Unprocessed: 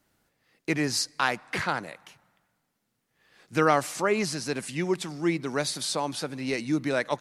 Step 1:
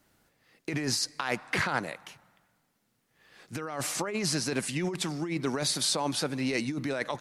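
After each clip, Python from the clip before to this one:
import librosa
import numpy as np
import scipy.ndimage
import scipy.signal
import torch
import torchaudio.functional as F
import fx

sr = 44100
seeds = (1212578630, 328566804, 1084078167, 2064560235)

y = fx.over_compress(x, sr, threshold_db=-30.0, ratio=-1.0)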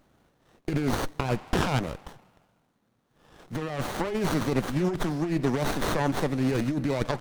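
y = fx.running_max(x, sr, window=17)
y = F.gain(torch.from_numpy(y), 5.5).numpy()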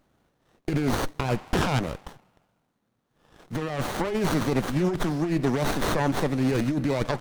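y = fx.leveller(x, sr, passes=1)
y = F.gain(torch.from_numpy(y), -1.5).numpy()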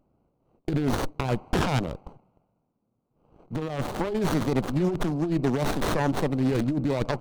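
y = fx.wiener(x, sr, points=25)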